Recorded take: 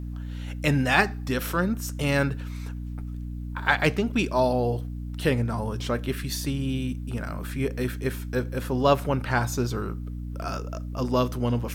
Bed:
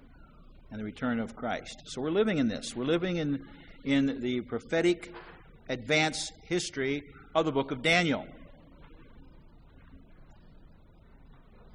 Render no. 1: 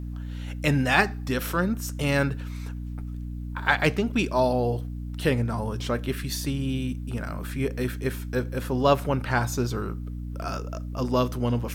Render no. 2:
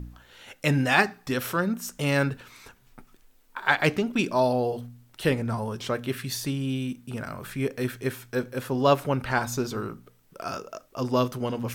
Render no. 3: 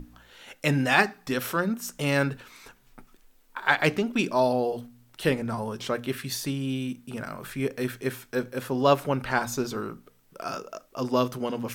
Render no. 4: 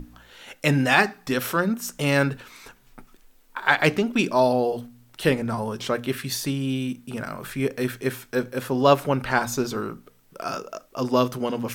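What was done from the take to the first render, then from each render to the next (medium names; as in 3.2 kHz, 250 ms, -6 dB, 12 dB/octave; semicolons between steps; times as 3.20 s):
no audible change
de-hum 60 Hz, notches 5
peaking EQ 84 Hz -13 dB 0.53 oct; hum notches 60/120/180 Hz
trim +3.5 dB; peak limiter -3 dBFS, peak gain reduction 2 dB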